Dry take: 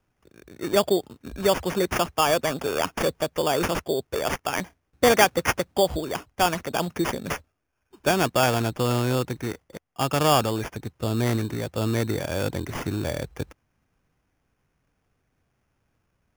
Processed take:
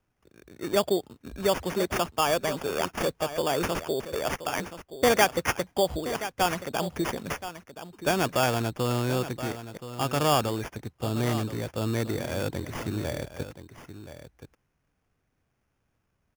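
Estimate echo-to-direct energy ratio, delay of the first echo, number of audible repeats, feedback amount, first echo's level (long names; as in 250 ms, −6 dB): −12.5 dB, 1,025 ms, 1, repeats not evenly spaced, −12.5 dB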